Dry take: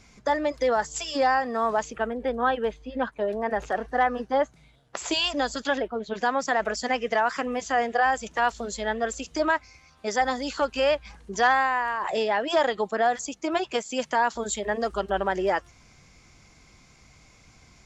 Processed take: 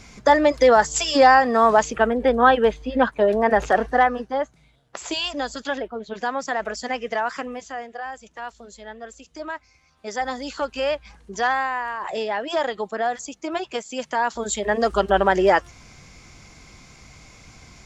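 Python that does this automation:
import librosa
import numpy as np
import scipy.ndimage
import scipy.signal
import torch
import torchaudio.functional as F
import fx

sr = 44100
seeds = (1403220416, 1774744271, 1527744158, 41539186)

y = fx.gain(x, sr, db=fx.line((3.83, 9.0), (4.34, -1.0), (7.39, -1.0), (7.87, -10.5), (9.25, -10.5), (10.37, -1.0), (14.04, -1.0), (14.96, 8.0)))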